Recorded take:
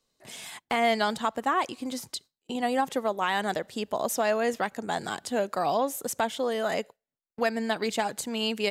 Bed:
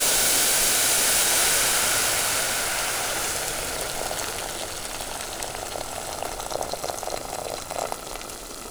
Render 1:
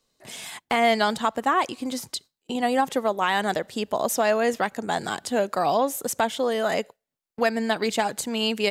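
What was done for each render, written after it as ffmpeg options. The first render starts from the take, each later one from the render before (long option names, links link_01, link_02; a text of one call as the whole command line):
ffmpeg -i in.wav -af "volume=4dB" out.wav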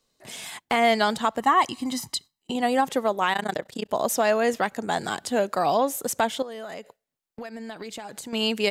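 ffmpeg -i in.wav -filter_complex "[0:a]asettb=1/sr,asplit=3[link_01][link_02][link_03];[link_01]atrim=end=1.404[link_04];[link_02]atrim=start=1.4:end=2.51,asetpts=PTS-STARTPTS,afade=type=in:duration=0.004:curve=qsin,afade=type=out:start_time=1.106:duration=0.004:curve=qsin,aecho=1:1:1:0.61,atrim=end_sample=48951[link_05];[link_03]atrim=start=2.506[link_06];[link_04][link_05]acrossfade=duration=0.004:curve1=hsin:curve2=qsin[link_07];[link_07][link_06]acrossfade=duration=0.004:curve1=qsin:curve2=hsin,asettb=1/sr,asplit=3[link_08][link_09][link_10];[link_08]atrim=end=3.334[link_11];[link_09]atrim=start=3.33:end=3.91,asetpts=PTS-STARTPTS,afade=type=in:duration=0.004:curve=qsin,afade=type=out:start_time=0.576:duration=0.004:curve=qsin,tremolo=f=30:d=0.947[link_12];[link_10]atrim=start=3.906[link_13];[link_11][link_12]acrossfade=duration=0.004:curve1=hsin:curve2=qsin[link_14];[link_14][link_13]acrossfade=duration=0.004:curve1=qsin:curve2=hsin,asettb=1/sr,asplit=3[link_15][link_16][link_17];[link_15]atrim=end=6.424[link_18];[link_16]atrim=start=6.42:end=8.33,asetpts=PTS-STARTPTS,afade=type=in:duration=0.004:curve=qsin,afade=type=out:start_time=1.906:duration=0.004:curve=qsin,acompressor=threshold=-33dB:ratio=10:attack=3.2:release=140:knee=1:detection=peak[link_19];[link_17]atrim=start=8.326[link_20];[link_18][link_19]acrossfade=duration=0.004:curve1=hsin:curve2=qsin[link_21];[link_21][link_20]acrossfade=duration=0.004:curve1=qsin:curve2=hsin" out.wav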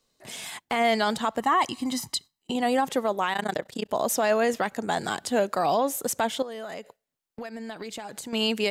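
ffmpeg -i in.wav -af "alimiter=limit=-14.5dB:level=0:latency=1:release=13" out.wav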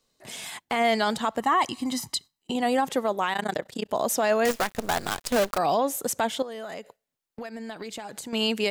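ffmpeg -i in.wav -filter_complex "[0:a]asettb=1/sr,asplit=3[link_01][link_02][link_03];[link_01]atrim=end=4.454[link_04];[link_02]atrim=start=4.45:end=5.58,asetpts=PTS-STARTPTS,afade=type=in:duration=0.004:curve=qsin,afade=type=out:start_time=1.126:duration=0.004:curve=qsin,acrusher=bits=5:dc=4:mix=0:aa=0.000001[link_05];[link_03]atrim=start=5.576[link_06];[link_04][link_05]acrossfade=duration=0.004:curve1=hsin:curve2=qsin[link_07];[link_07][link_06]acrossfade=duration=0.004:curve1=qsin:curve2=hsin" out.wav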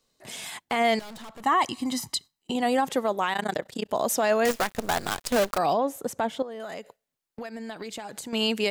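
ffmpeg -i in.wav -filter_complex "[0:a]asettb=1/sr,asplit=3[link_01][link_02][link_03];[link_01]atrim=end=0.994[link_04];[link_02]atrim=start=0.99:end=1.44,asetpts=PTS-STARTPTS,afade=type=in:duration=0.004:curve=qsin,afade=type=out:start_time=0.446:duration=0.004:curve=qsin,aeval=exprs='(tanh(112*val(0)+0.5)-tanh(0.5))/112':channel_layout=same[link_05];[link_03]atrim=start=1.436[link_06];[link_04][link_05]acrossfade=duration=0.004:curve1=hsin:curve2=qsin[link_07];[link_07][link_06]acrossfade=duration=0.004:curve1=qsin:curve2=hsin,asettb=1/sr,asplit=3[link_08][link_09][link_10];[link_08]atrim=end=5.734[link_11];[link_09]atrim=start=5.73:end=6.6,asetpts=PTS-STARTPTS,afade=type=in:duration=0.004:curve=qsin,afade=type=out:start_time=0.866:duration=0.004:curve=qsin,highshelf=frequency=2200:gain=-11[link_12];[link_10]atrim=start=6.596[link_13];[link_11][link_12]acrossfade=duration=0.004:curve1=hsin:curve2=qsin[link_14];[link_14][link_13]acrossfade=duration=0.004:curve1=qsin:curve2=hsin" out.wav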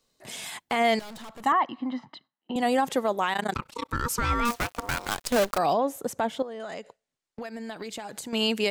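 ffmpeg -i in.wav -filter_complex "[0:a]asettb=1/sr,asplit=3[link_01][link_02][link_03];[link_01]atrim=end=1.524[link_04];[link_02]atrim=start=1.52:end=2.56,asetpts=PTS-STARTPTS,afade=type=in:duration=0.004:curve=qsin,afade=type=out:start_time=1.036:duration=0.004:curve=qsin,highpass=frequency=160:width=0.5412,highpass=frequency=160:width=1.3066,equalizer=frequency=170:width_type=q:width=4:gain=-8,equalizer=frequency=400:width_type=q:width=4:gain=-10,equalizer=frequency=2400:width_type=q:width=4:gain=-10,lowpass=frequency=2600:width=0.5412,lowpass=frequency=2600:width=1.3066[link_05];[link_03]atrim=start=2.556[link_06];[link_04][link_05]acrossfade=duration=0.004:curve1=hsin:curve2=qsin[link_07];[link_07][link_06]acrossfade=duration=0.004:curve1=qsin:curve2=hsin,asettb=1/sr,asplit=3[link_08][link_09][link_10];[link_08]atrim=end=3.544[link_11];[link_09]atrim=start=3.54:end=5.09,asetpts=PTS-STARTPTS,afade=type=in:duration=0.004:curve=qsin,afade=type=out:start_time=1.546:duration=0.004:curve=qsin,aeval=exprs='val(0)*sin(2*PI*710*n/s)':channel_layout=same[link_12];[link_10]atrim=start=5.086[link_13];[link_11][link_12]acrossfade=duration=0.004:curve1=hsin:curve2=qsin[link_14];[link_14][link_13]acrossfade=duration=0.004:curve1=qsin:curve2=hsin,asettb=1/sr,asplit=3[link_15][link_16][link_17];[link_15]atrim=end=6.504[link_18];[link_16]atrim=start=6.5:end=7.42,asetpts=PTS-STARTPTS,afade=type=in:duration=0.004:curve=qsin,afade=type=out:start_time=0.916:duration=0.004:curve=qsin,lowpass=frequency=8900:width=0.5412,lowpass=frequency=8900:width=1.3066[link_19];[link_17]atrim=start=7.416[link_20];[link_18][link_19]acrossfade=duration=0.004:curve1=hsin:curve2=qsin[link_21];[link_21][link_20]acrossfade=duration=0.004:curve1=qsin:curve2=hsin" out.wav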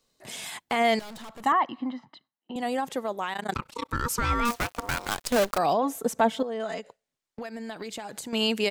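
ffmpeg -i in.wav -filter_complex "[0:a]asplit=3[link_01][link_02][link_03];[link_01]afade=type=out:start_time=5.82:duration=0.02[link_04];[link_02]aecho=1:1:4.5:0.98,afade=type=in:start_time=5.82:duration=0.02,afade=type=out:start_time=6.79:duration=0.02[link_05];[link_03]afade=type=in:start_time=6.79:duration=0.02[link_06];[link_04][link_05][link_06]amix=inputs=3:normalize=0,asplit=3[link_07][link_08][link_09];[link_07]atrim=end=1.922[link_10];[link_08]atrim=start=1.918:end=3.492,asetpts=PTS-STARTPTS,volume=-5dB[link_11];[link_09]atrim=start=3.488[link_12];[link_10][link_11]acrossfade=duration=0.004:curve1=hsin:curve2=hsin[link_13];[link_13][link_12]acrossfade=duration=0.004:curve1=hsin:curve2=hsin" out.wav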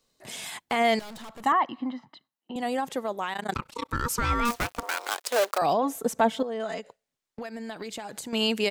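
ffmpeg -i in.wav -filter_complex "[0:a]asettb=1/sr,asplit=3[link_01][link_02][link_03];[link_01]atrim=end=4.834[link_04];[link_02]atrim=start=4.83:end=5.62,asetpts=PTS-STARTPTS,afade=type=in:duration=0.004:curve=qsin,afade=type=out:start_time=0.786:duration=0.004:curve=qsin,highpass=frequency=400:width=0.5412,highpass=frequency=400:width=1.3066[link_05];[link_03]atrim=start=5.616[link_06];[link_04][link_05]acrossfade=duration=0.004:curve1=hsin:curve2=qsin[link_07];[link_07][link_06]acrossfade=duration=0.004:curve1=qsin:curve2=hsin" out.wav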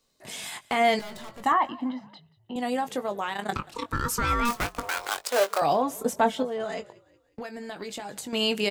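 ffmpeg -i in.wav -filter_complex "[0:a]asplit=2[link_01][link_02];[link_02]adelay=20,volume=-9dB[link_03];[link_01][link_03]amix=inputs=2:normalize=0,asplit=4[link_04][link_05][link_06][link_07];[link_05]adelay=182,afreqshift=-48,volume=-23dB[link_08];[link_06]adelay=364,afreqshift=-96,volume=-29.4dB[link_09];[link_07]adelay=546,afreqshift=-144,volume=-35.8dB[link_10];[link_04][link_08][link_09][link_10]amix=inputs=4:normalize=0" out.wav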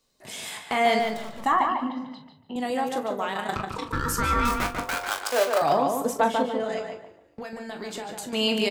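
ffmpeg -i in.wav -filter_complex "[0:a]asplit=2[link_01][link_02];[link_02]adelay=41,volume=-10dB[link_03];[link_01][link_03]amix=inputs=2:normalize=0,asplit=2[link_04][link_05];[link_05]adelay=145,lowpass=frequency=2800:poles=1,volume=-4dB,asplit=2[link_06][link_07];[link_07]adelay=145,lowpass=frequency=2800:poles=1,volume=0.29,asplit=2[link_08][link_09];[link_09]adelay=145,lowpass=frequency=2800:poles=1,volume=0.29,asplit=2[link_10][link_11];[link_11]adelay=145,lowpass=frequency=2800:poles=1,volume=0.29[link_12];[link_04][link_06][link_08][link_10][link_12]amix=inputs=5:normalize=0" out.wav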